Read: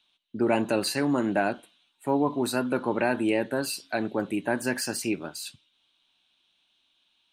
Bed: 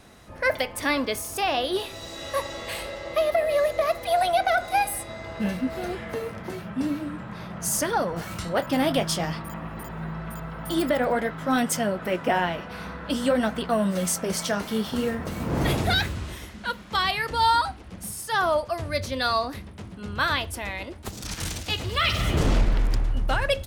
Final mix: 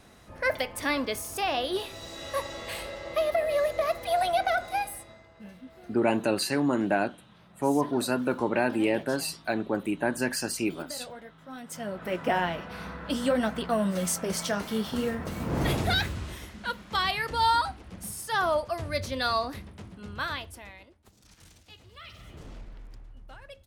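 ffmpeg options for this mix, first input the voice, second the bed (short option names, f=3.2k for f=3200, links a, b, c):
-filter_complex "[0:a]adelay=5550,volume=-0.5dB[a];[1:a]volume=13dB,afade=t=out:st=4.47:d=0.81:silence=0.158489,afade=t=in:st=11.63:d=0.63:silence=0.149624,afade=t=out:st=19.55:d=1.43:silence=0.0944061[b];[a][b]amix=inputs=2:normalize=0"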